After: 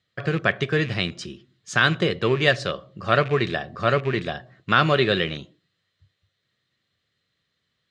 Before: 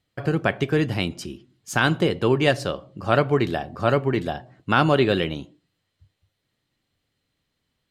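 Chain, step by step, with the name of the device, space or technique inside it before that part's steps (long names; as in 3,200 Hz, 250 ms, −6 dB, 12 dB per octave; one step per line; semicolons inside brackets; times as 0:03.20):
car door speaker with a rattle (loose part that buzzes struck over −28 dBFS, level −28 dBFS; loudspeaker in its box 89–7,400 Hz, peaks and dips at 280 Hz −9 dB, 860 Hz −9 dB, 1,200 Hz +4 dB, 1,800 Hz +6 dB, 3,700 Hz +6 dB)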